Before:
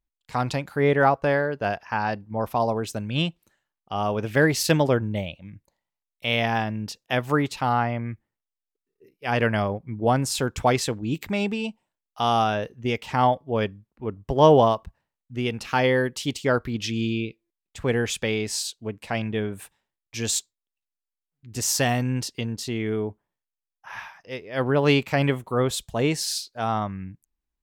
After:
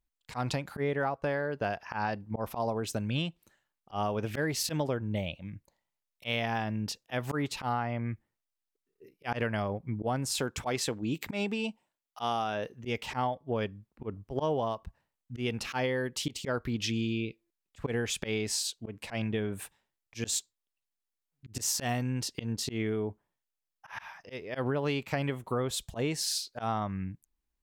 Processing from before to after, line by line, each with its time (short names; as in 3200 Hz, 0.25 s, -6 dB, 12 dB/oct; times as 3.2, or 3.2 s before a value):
10.34–12.85 low shelf 98 Hz -11.5 dB
whole clip: auto swell 0.128 s; compressor 6:1, threshold -28 dBFS